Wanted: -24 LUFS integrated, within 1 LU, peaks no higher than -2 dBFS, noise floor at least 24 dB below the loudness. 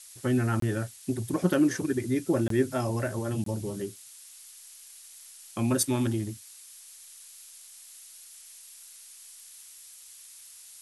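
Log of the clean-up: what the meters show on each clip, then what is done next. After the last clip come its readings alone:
dropouts 3; longest dropout 23 ms; noise floor -50 dBFS; noise floor target -53 dBFS; loudness -28.5 LUFS; peak level -11.0 dBFS; loudness target -24.0 LUFS
-> interpolate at 0.60/2.48/3.44 s, 23 ms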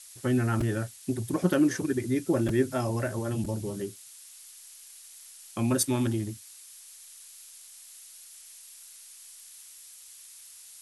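dropouts 0; noise floor -50 dBFS; noise floor target -53 dBFS
-> noise reduction 6 dB, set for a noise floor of -50 dBFS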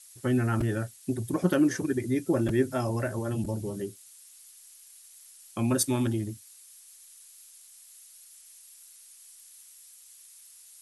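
noise floor -53 dBFS; loudness -28.5 LUFS; peak level -11.0 dBFS; loudness target -24.0 LUFS
-> trim +4.5 dB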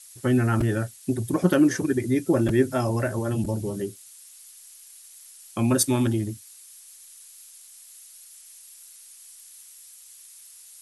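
loudness -24.0 LUFS; peak level -6.5 dBFS; noise floor -49 dBFS

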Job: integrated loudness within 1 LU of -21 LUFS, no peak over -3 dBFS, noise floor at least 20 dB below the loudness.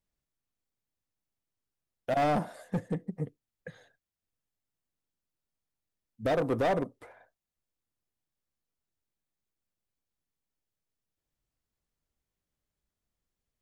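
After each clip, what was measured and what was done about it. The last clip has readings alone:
clipped samples 1.0%; clipping level -23.0 dBFS; loudness -31.5 LUFS; peak level -23.0 dBFS; loudness target -21.0 LUFS
-> clip repair -23 dBFS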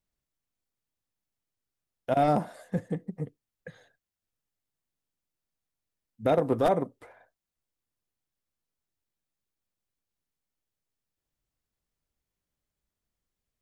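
clipped samples 0.0%; loudness -28.5 LUFS; peak level -14.0 dBFS; loudness target -21.0 LUFS
-> trim +7.5 dB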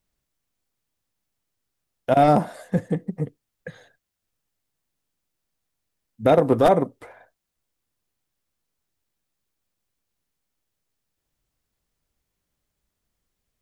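loudness -21.0 LUFS; peak level -6.5 dBFS; noise floor -81 dBFS

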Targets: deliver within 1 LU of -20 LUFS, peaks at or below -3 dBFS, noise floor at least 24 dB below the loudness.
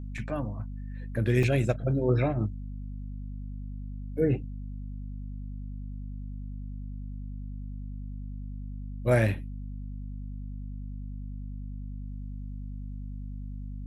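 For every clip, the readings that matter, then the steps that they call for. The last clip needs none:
dropouts 2; longest dropout 2.6 ms; hum 50 Hz; highest harmonic 250 Hz; hum level -35 dBFS; loudness -33.0 LUFS; peak level -11.0 dBFS; loudness target -20.0 LUFS
-> interpolate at 0.18/1.43 s, 2.6 ms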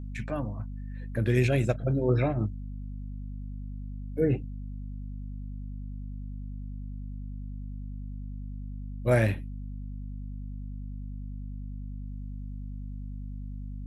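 dropouts 0; hum 50 Hz; highest harmonic 250 Hz; hum level -35 dBFS
-> de-hum 50 Hz, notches 5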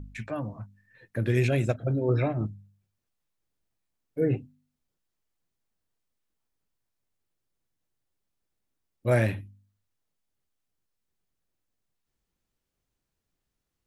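hum not found; loudness -28.0 LUFS; peak level -11.5 dBFS; loudness target -20.0 LUFS
-> trim +8 dB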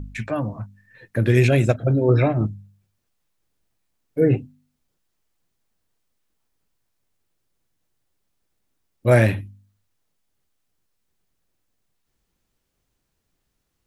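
loudness -20.0 LUFS; peak level -3.5 dBFS; noise floor -75 dBFS

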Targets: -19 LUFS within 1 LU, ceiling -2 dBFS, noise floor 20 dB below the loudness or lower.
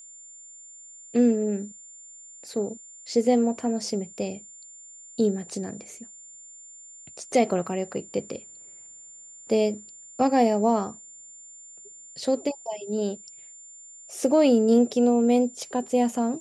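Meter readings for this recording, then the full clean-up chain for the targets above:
steady tone 7.2 kHz; tone level -44 dBFS; loudness -24.5 LUFS; peak level -8.5 dBFS; loudness target -19.0 LUFS
-> band-stop 7.2 kHz, Q 30; trim +5.5 dB

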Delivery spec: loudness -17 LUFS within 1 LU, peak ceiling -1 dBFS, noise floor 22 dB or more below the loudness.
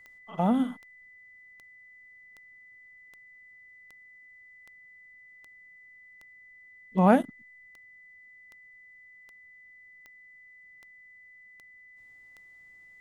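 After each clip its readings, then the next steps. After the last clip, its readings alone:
clicks found 17; steady tone 2 kHz; tone level -51 dBFS; loudness -26.0 LUFS; peak level -6.5 dBFS; loudness target -17.0 LUFS
-> de-click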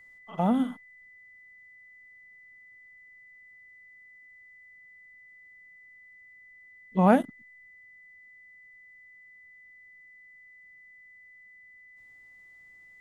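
clicks found 0; steady tone 2 kHz; tone level -51 dBFS
-> band-stop 2 kHz, Q 30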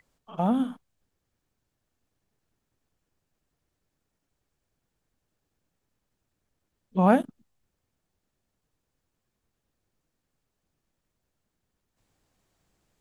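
steady tone not found; loudness -25.5 LUFS; peak level -6.5 dBFS; loudness target -17.0 LUFS
-> trim +8.5 dB; peak limiter -1 dBFS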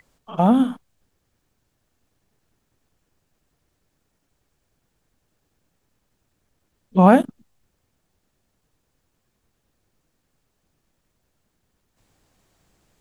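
loudness -17.5 LUFS; peak level -1.0 dBFS; noise floor -73 dBFS

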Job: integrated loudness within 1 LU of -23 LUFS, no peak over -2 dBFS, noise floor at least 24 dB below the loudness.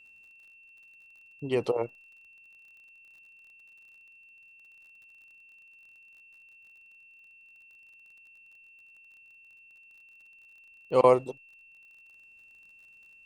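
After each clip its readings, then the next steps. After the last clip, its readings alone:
tick rate 37 per s; steady tone 2.7 kHz; tone level -53 dBFS; loudness -26.5 LUFS; peak level -7.0 dBFS; loudness target -23.0 LUFS
-> de-click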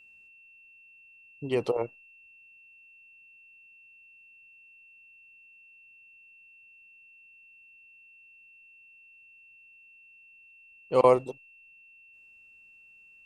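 tick rate 0 per s; steady tone 2.7 kHz; tone level -53 dBFS
-> band-stop 2.7 kHz, Q 30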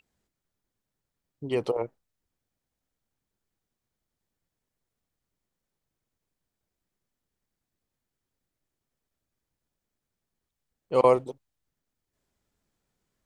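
steady tone not found; loudness -26.0 LUFS; peak level -7.5 dBFS; loudness target -23.0 LUFS
-> trim +3 dB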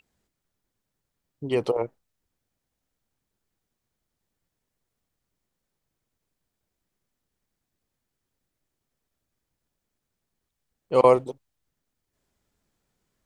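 loudness -23.0 LUFS; peak level -4.5 dBFS; noise floor -83 dBFS

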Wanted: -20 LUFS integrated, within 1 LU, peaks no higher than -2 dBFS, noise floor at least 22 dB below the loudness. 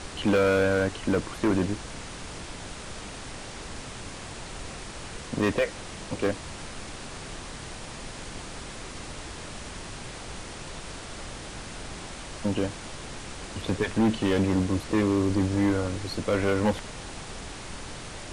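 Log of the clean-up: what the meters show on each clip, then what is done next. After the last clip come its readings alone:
clipped samples 1.5%; clipping level -18.0 dBFS; noise floor -40 dBFS; noise floor target -52 dBFS; loudness -30.0 LUFS; peak level -18.0 dBFS; loudness target -20.0 LUFS
-> clip repair -18 dBFS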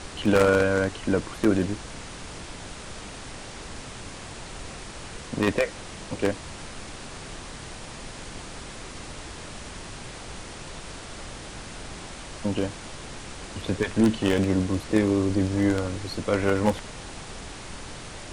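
clipped samples 0.0%; noise floor -40 dBFS; noise floor target -49 dBFS
-> noise print and reduce 9 dB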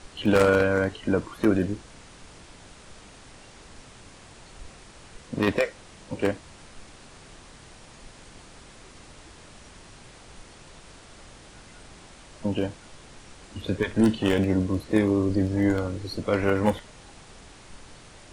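noise floor -49 dBFS; loudness -25.0 LUFS; peak level -9.0 dBFS; loudness target -20.0 LUFS
-> trim +5 dB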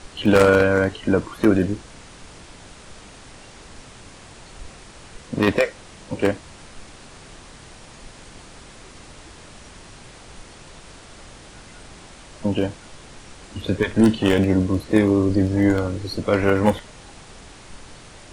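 loudness -20.0 LUFS; peak level -4.0 dBFS; noise floor -44 dBFS

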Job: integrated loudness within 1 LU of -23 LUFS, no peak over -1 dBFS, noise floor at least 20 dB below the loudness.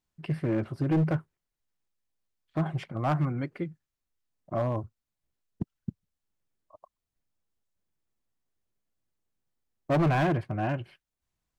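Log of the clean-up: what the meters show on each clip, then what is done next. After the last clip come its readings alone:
clipped samples 1.1%; clipping level -20.5 dBFS; loudness -30.0 LUFS; peak level -20.5 dBFS; loudness target -23.0 LUFS
-> clip repair -20.5 dBFS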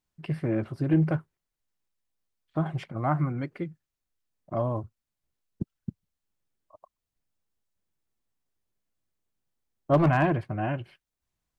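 clipped samples 0.0%; loudness -28.5 LUFS; peak level -11.5 dBFS; loudness target -23.0 LUFS
-> trim +5.5 dB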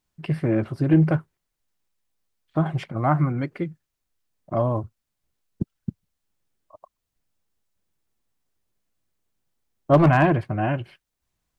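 loudness -23.0 LUFS; peak level -6.0 dBFS; noise floor -81 dBFS

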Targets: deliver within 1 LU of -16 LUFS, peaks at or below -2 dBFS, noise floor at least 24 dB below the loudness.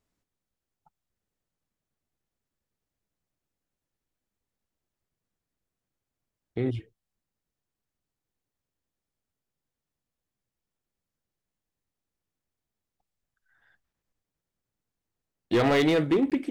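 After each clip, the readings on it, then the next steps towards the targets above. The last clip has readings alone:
clipped samples 0.3%; clipping level -17.5 dBFS; dropouts 1; longest dropout 17 ms; loudness -25.0 LUFS; peak level -17.5 dBFS; loudness target -16.0 LUFS
-> clip repair -17.5 dBFS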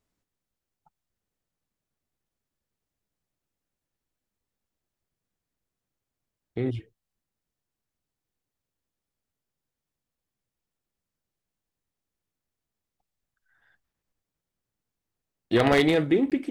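clipped samples 0.0%; dropouts 1; longest dropout 17 ms
-> interpolate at 16.30 s, 17 ms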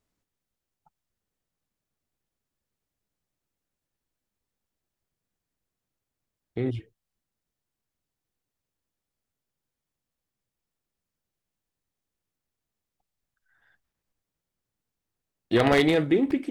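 dropouts 0; loudness -23.5 LUFS; peak level -8.5 dBFS; loudness target -16.0 LUFS
-> trim +7.5 dB; peak limiter -2 dBFS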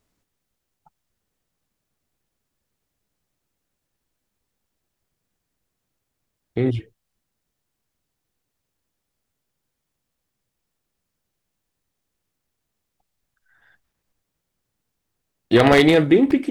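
loudness -16.5 LUFS; peak level -2.0 dBFS; noise floor -80 dBFS

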